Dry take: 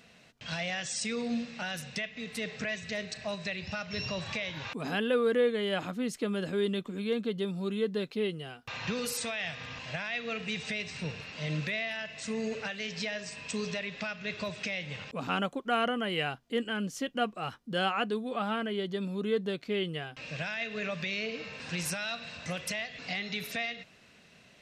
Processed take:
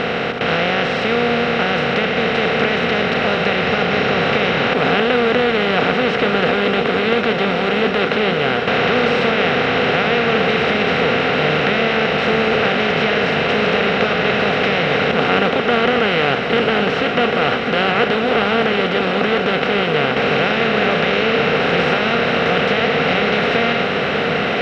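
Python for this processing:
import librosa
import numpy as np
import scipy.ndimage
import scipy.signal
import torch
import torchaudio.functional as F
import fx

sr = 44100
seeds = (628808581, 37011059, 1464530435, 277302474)

y = fx.bin_compress(x, sr, power=0.2)
y = scipy.signal.sosfilt(scipy.signal.butter(4, 3700.0, 'lowpass', fs=sr, output='sos'), y)
y = fx.echo_diffused(y, sr, ms=1620, feedback_pct=74, wet_db=-8.5)
y = F.gain(torch.from_numpy(y), 5.0).numpy()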